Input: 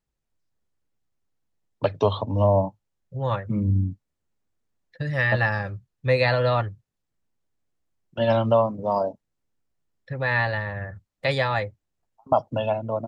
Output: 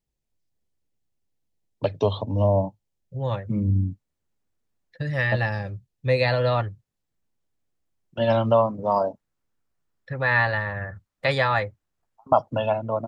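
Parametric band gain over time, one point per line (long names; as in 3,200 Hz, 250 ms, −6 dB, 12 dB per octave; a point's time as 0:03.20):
parametric band 1,300 Hz 1.1 octaves
0:03.42 −8 dB
0:03.82 −1 dB
0:05.12 −1 dB
0:05.60 −10.5 dB
0:06.57 −1.5 dB
0:08.19 −1.5 dB
0:08.87 +5 dB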